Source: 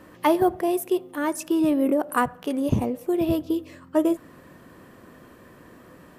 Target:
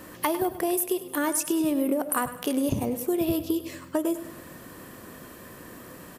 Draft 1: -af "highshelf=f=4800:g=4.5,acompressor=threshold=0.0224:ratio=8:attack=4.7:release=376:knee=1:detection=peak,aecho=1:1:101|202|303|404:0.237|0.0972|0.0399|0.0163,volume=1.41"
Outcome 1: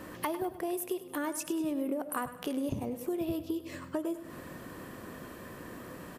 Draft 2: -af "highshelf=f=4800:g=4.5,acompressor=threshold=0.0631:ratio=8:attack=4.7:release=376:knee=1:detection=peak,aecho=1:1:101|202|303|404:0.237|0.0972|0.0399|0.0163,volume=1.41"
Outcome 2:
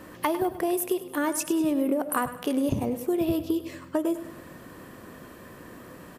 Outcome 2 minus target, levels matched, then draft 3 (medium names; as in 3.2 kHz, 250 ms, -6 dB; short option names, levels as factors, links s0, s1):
8 kHz band -3.5 dB
-af "highshelf=f=4800:g=13,acompressor=threshold=0.0631:ratio=8:attack=4.7:release=376:knee=1:detection=peak,aecho=1:1:101|202|303|404:0.237|0.0972|0.0399|0.0163,volume=1.41"